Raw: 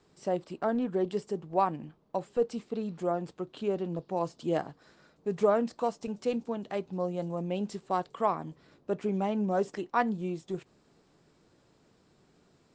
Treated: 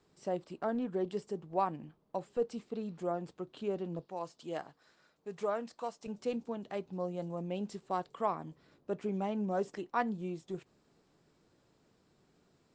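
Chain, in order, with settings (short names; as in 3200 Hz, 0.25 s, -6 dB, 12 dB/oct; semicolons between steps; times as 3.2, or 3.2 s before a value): 4.06–6.06 low shelf 500 Hz -10 dB; gain -5 dB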